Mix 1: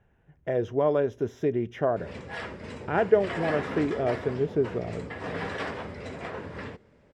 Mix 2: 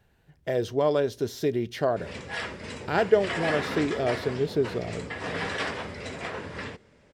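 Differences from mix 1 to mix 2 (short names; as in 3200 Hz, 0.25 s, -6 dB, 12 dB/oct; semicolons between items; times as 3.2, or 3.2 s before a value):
speech: remove running mean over 10 samples; background: add high shelf 2200 Hz +10.5 dB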